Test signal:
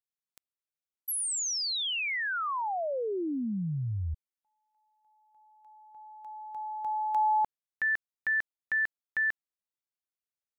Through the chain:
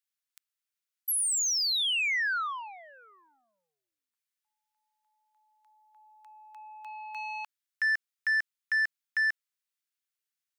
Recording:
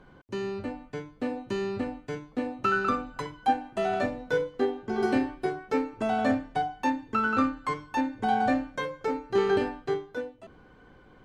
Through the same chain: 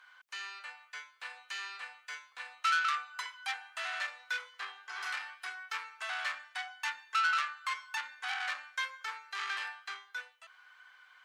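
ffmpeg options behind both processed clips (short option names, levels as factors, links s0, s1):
-af "acontrast=23,asoftclip=type=tanh:threshold=0.0794,highpass=f=1300:w=0.5412,highpass=f=1300:w=1.3066"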